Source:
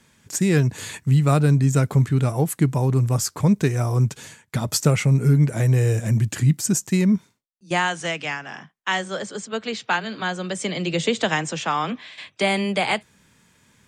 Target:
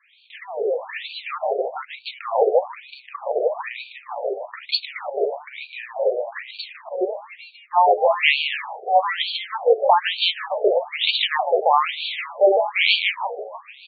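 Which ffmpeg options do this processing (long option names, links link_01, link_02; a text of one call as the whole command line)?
ffmpeg -i in.wav -filter_complex "[0:a]aeval=exprs='if(lt(val(0),0),0.447*val(0),val(0))':channel_layout=same,equalizer=frequency=6000:width_type=o:width=1.5:gain=6,asplit=2[link_01][link_02];[link_02]asplit=6[link_03][link_04][link_05][link_06][link_07][link_08];[link_03]adelay=154,afreqshift=70,volume=-9.5dB[link_09];[link_04]adelay=308,afreqshift=140,volume=-15dB[link_10];[link_05]adelay=462,afreqshift=210,volume=-20.5dB[link_11];[link_06]adelay=616,afreqshift=280,volume=-26dB[link_12];[link_07]adelay=770,afreqshift=350,volume=-31.6dB[link_13];[link_08]adelay=924,afreqshift=420,volume=-37.1dB[link_14];[link_09][link_10][link_11][link_12][link_13][link_14]amix=inputs=6:normalize=0[link_15];[link_01][link_15]amix=inputs=2:normalize=0,dynaudnorm=framelen=620:gausssize=3:maxgain=11.5dB,bandreject=frequency=145.1:width_type=h:width=4,bandreject=frequency=290.2:width_type=h:width=4,bandreject=frequency=435.3:width_type=h:width=4,acrossover=split=630|6300[link_16][link_17][link_18];[link_16]acontrast=48[link_19];[link_19][link_17][link_18]amix=inputs=3:normalize=0,equalizer=frequency=1500:width_type=o:width=0.46:gain=-14.5,alimiter=level_in=9.5dB:limit=-1dB:release=50:level=0:latency=1,afftfilt=real='re*between(b*sr/1024,540*pow(3300/540,0.5+0.5*sin(2*PI*1.1*pts/sr))/1.41,540*pow(3300/540,0.5+0.5*sin(2*PI*1.1*pts/sr))*1.41)':imag='im*between(b*sr/1024,540*pow(3300/540,0.5+0.5*sin(2*PI*1.1*pts/sr))/1.41,540*pow(3300/540,0.5+0.5*sin(2*PI*1.1*pts/sr))*1.41)':win_size=1024:overlap=0.75,volume=1.5dB" out.wav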